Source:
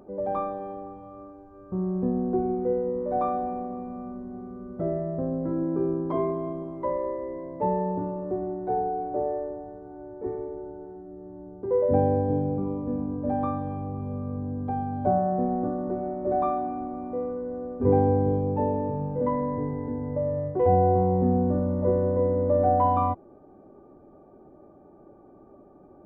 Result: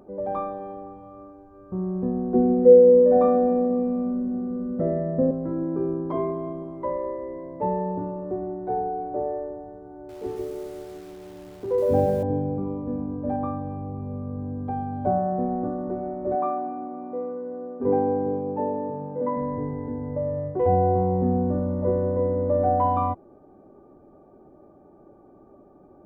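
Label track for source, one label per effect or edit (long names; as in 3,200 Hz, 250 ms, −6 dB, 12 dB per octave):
2.340000	5.310000	hollow resonant body resonances 230/500/1,800 Hz, height 17 dB, ringing for 95 ms
9.940000	12.230000	feedback echo at a low word length 148 ms, feedback 35%, word length 8 bits, level −3.5 dB
13.360000	14.390000	high-shelf EQ 2,100 Hz −10.5 dB
16.350000	19.370000	band-pass filter 210–2,200 Hz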